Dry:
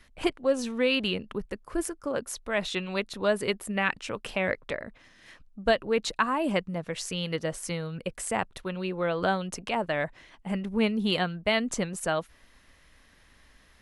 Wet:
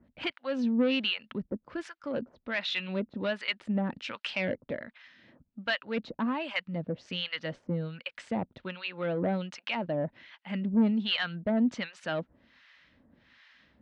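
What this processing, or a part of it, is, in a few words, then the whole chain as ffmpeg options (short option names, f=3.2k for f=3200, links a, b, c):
guitar amplifier with harmonic tremolo: -filter_complex "[0:a]acrossover=split=840[a][b];[a]aeval=exprs='val(0)*(1-1/2+1/2*cos(2*PI*1.3*n/s))':c=same[c];[b]aeval=exprs='val(0)*(1-1/2-1/2*cos(2*PI*1.3*n/s))':c=same[d];[c][d]amix=inputs=2:normalize=0,asoftclip=type=tanh:threshold=-25dB,highpass=110,equalizer=f=240:t=q:w=4:g=5,equalizer=f=420:t=q:w=4:g=-7,equalizer=f=740:t=q:w=4:g=-5,equalizer=f=1.1k:t=q:w=4:g=-6,lowpass=f=4.2k:w=0.5412,lowpass=f=4.2k:w=1.3066,asettb=1/sr,asplit=3[e][f][g];[e]atrim=end=3.794[h];[f]atrim=start=3.79:end=4.45,asetpts=PTS-STARTPTS,afade=t=in:d=0.004:c=qsin,afade=t=out:st=0.656:d=0.004:c=qsin,highshelf=f=5.5k:g=9.5[i];[g]atrim=start=4.446[j];[h][i]acrossfade=d=0.004:c1=hsin:c2=qsin[k];[k][j]acrossfade=d=0.004:c1=qsin:c2=hsin,volume=5dB"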